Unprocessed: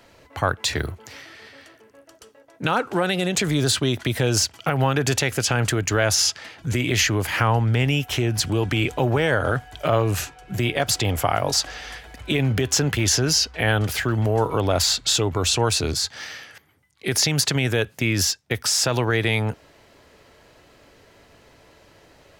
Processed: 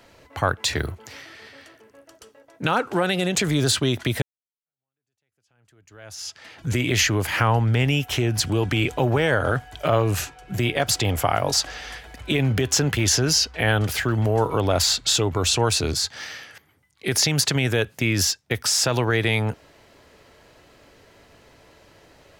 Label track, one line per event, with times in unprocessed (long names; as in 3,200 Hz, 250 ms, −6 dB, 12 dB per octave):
4.220000	6.580000	fade in exponential